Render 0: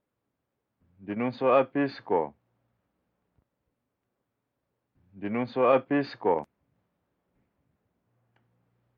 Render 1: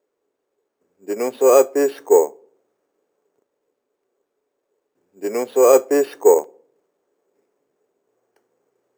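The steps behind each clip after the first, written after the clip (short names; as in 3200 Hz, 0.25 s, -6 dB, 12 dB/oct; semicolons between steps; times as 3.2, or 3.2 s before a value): resonant high-pass 410 Hz, resonance Q 4.9; sample-and-hold 6×; on a send at -21.5 dB: reverb RT60 0.60 s, pre-delay 7 ms; on the sum: gain +3 dB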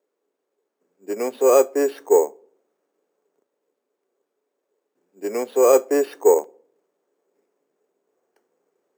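HPF 160 Hz 24 dB/oct; gain -2.5 dB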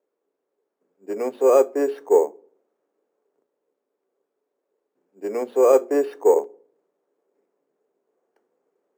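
high shelf 2400 Hz -10.5 dB; notches 60/120/180/240/300/360/420 Hz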